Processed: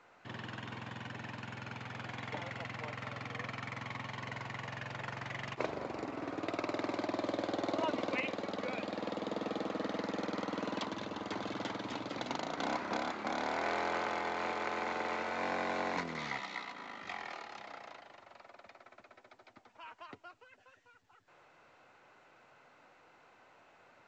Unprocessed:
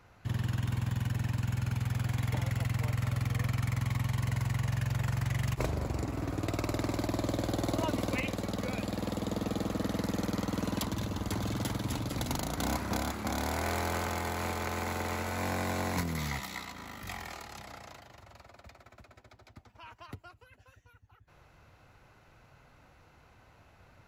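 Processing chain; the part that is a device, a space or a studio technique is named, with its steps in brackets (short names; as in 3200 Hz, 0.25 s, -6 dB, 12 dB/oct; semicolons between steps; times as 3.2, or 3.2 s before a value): telephone (BPF 330–3600 Hz; µ-law 128 kbps 16000 Hz)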